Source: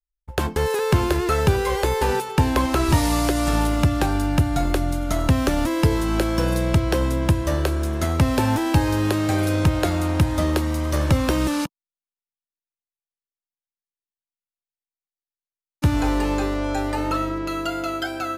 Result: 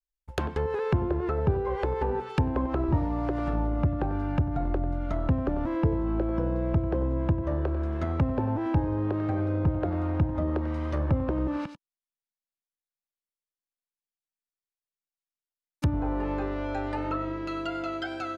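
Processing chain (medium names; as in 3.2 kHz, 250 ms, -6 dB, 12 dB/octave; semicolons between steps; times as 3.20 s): delay 94 ms -14 dB; low-pass that closes with the level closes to 840 Hz, closed at -16 dBFS; trim -6.5 dB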